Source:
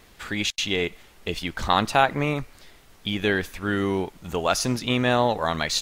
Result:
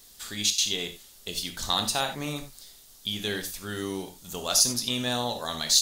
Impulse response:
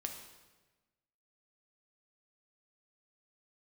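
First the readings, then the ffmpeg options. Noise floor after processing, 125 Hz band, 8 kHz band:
−53 dBFS, −9.5 dB, +8.0 dB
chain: -filter_complex "[0:a]aexciter=amount=7.3:drive=3.6:freq=3400[link_01];[1:a]atrim=start_sample=2205,atrim=end_sample=4410[link_02];[link_01][link_02]afir=irnorm=-1:irlink=0,volume=-8dB"

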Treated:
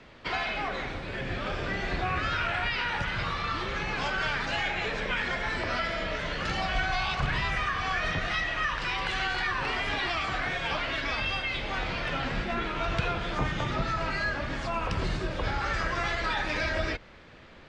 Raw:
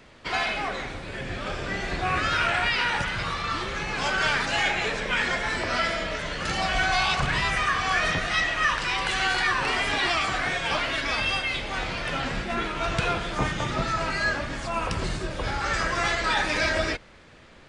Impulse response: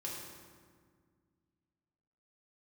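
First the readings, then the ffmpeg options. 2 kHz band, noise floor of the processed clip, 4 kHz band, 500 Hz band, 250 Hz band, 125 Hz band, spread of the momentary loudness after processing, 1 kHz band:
−4.5 dB, −50 dBFS, −5.5 dB, −3.5 dB, −3.0 dB, −1.0 dB, 4 LU, −4.0 dB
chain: -filter_complex "[0:a]acrossover=split=130[link_01][link_02];[link_02]acompressor=threshold=-29dB:ratio=2.5[link_03];[link_01][link_03]amix=inputs=2:normalize=0,lowpass=4800"

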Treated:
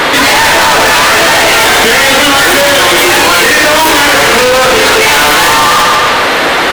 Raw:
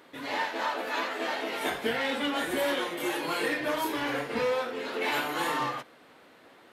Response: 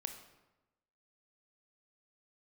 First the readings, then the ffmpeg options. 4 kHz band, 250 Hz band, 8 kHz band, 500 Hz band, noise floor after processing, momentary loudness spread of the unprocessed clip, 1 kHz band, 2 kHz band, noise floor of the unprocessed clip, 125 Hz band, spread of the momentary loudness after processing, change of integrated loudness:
+28.5 dB, +19.0 dB, +33.5 dB, +22.0 dB, −9 dBFS, 3 LU, +25.0 dB, +26.5 dB, −56 dBFS, +25.5 dB, 1 LU, +25.0 dB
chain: -filter_complex "[0:a]aecho=1:1:141|282|423|564:0.251|0.1|0.0402|0.0161,asplit=2[link_01][link_02];[link_02]highpass=frequency=720:poles=1,volume=38dB,asoftclip=type=tanh:threshold=-16dB[link_03];[link_01][link_03]amix=inputs=2:normalize=0,lowpass=frequency=5200:poles=1,volume=-6dB,apsyclip=27dB,volume=-5.5dB"

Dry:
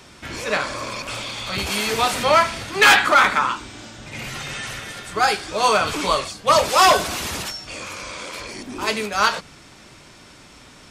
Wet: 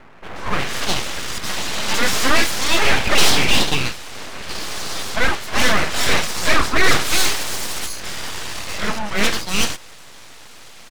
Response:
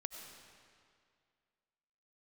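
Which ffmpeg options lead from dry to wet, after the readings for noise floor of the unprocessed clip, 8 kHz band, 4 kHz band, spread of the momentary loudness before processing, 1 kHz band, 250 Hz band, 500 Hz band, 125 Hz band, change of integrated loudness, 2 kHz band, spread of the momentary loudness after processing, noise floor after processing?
−46 dBFS, +5.5 dB, +3.5 dB, 18 LU, −5.5 dB, +5.0 dB, −3.0 dB, +6.0 dB, −0.5 dB, +0.5 dB, 12 LU, −40 dBFS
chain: -filter_complex "[0:a]acrossover=split=1300[link_01][link_02];[link_02]adelay=360[link_03];[link_01][link_03]amix=inputs=2:normalize=0,asplit=2[link_04][link_05];[link_05]highpass=frequency=720:poles=1,volume=16dB,asoftclip=type=tanh:threshold=-2dB[link_06];[link_04][link_06]amix=inputs=2:normalize=0,lowpass=frequency=3000:poles=1,volume=-6dB,aeval=exprs='abs(val(0))':channel_layout=same,volume=1dB"

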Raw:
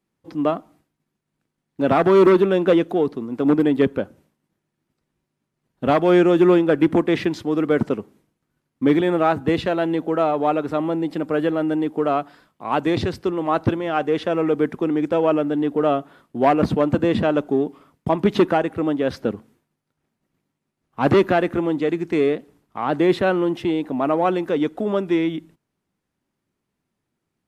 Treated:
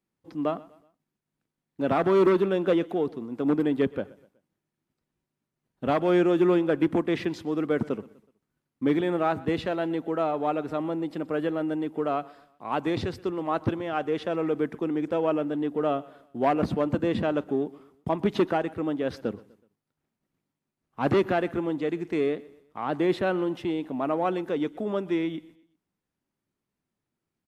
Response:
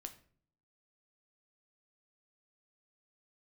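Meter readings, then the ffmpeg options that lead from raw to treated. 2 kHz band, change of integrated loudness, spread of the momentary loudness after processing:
−7.0 dB, −7.0 dB, 10 LU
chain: -filter_complex "[0:a]asplit=2[link_01][link_02];[link_02]aecho=0:1:124|248|372:0.0891|0.0357|0.0143[link_03];[link_01][link_03]amix=inputs=2:normalize=0,volume=-7dB"

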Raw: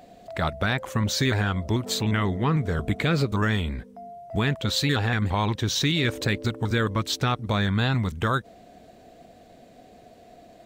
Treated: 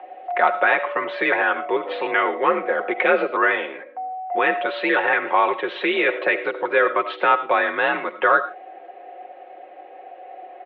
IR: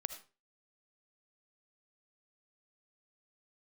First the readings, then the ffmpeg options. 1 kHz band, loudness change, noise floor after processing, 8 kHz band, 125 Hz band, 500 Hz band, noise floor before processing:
+10.5 dB, +4.5 dB, −42 dBFS, below −40 dB, below −25 dB, +9.0 dB, −51 dBFS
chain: -filter_complex "[0:a]highpass=frequency=360:width_type=q:width=0.5412,highpass=frequency=360:width_type=q:width=1.307,lowpass=frequency=2900:width_type=q:width=0.5176,lowpass=frequency=2900:width_type=q:width=0.7071,lowpass=frequency=2900:width_type=q:width=1.932,afreqshift=51,aecho=1:1:5.5:0.64,asplit=2[link_01][link_02];[1:a]atrim=start_sample=2205,afade=type=out:start_time=0.21:duration=0.01,atrim=end_sample=9702,lowpass=3200[link_03];[link_02][link_03]afir=irnorm=-1:irlink=0,volume=6.5dB[link_04];[link_01][link_04]amix=inputs=2:normalize=0"

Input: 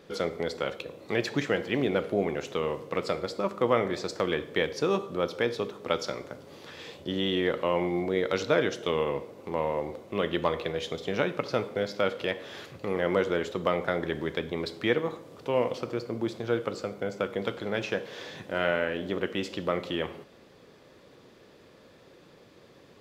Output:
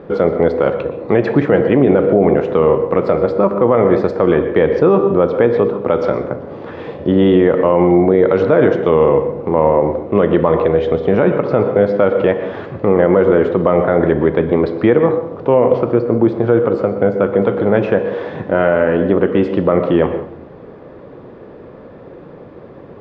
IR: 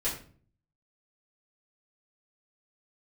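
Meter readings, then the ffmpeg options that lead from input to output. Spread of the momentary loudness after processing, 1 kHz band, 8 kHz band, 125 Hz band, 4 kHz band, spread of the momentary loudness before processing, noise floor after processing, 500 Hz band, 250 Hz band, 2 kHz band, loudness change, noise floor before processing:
6 LU, +13.5 dB, below −10 dB, +17.5 dB, can't be measured, 8 LU, −37 dBFS, +17.0 dB, +17.5 dB, +8.0 dB, +16.0 dB, −55 dBFS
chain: -filter_complex "[0:a]lowpass=1100,asplit=2[link_01][link_02];[1:a]atrim=start_sample=2205,adelay=114[link_03];[link_02][link_03]afir=irnorm=-1:irlink=0,volume=-19dB[link_04];[link_01][link_04]amix=inputs=2:normalize=0,alimiter=level_in=20dB:limit=-1dB:release=50:level=0:latency=1,volume=-1dB"

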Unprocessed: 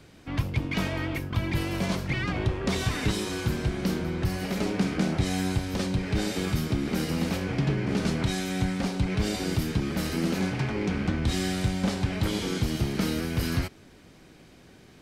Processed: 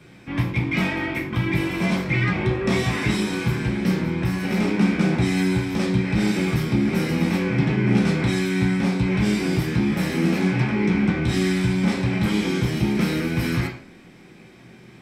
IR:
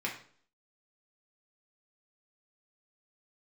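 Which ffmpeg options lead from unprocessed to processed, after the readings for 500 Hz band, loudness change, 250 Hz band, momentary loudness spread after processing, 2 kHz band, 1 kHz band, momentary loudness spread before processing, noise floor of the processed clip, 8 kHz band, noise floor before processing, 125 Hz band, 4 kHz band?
+5.5 dB, +6.5 dB, +7.5 dB, 3 LU, +7.5 dB, +4.5 dB, 2 LU, −47 dBFS, 0.0 dB, −53 dBFS, +5.5 dB, +2.5 dB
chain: -filter_complex "[1:a]atrim=start_sample=2205[link_01];[0:a][link_01]afir=irnorm=-1:irlink=0,volume=1.5dB"

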